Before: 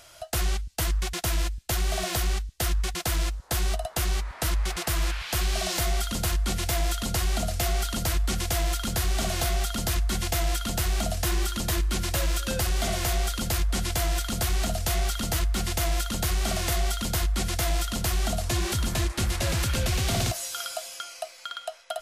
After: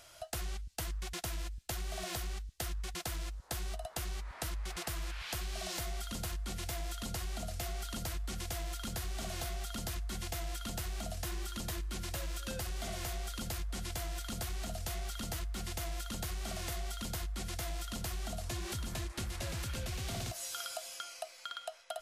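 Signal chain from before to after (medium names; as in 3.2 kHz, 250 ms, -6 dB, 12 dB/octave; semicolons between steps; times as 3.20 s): compression, threshold -30 dBFS, peak gain reduction 8.5 dB; trim -6 dB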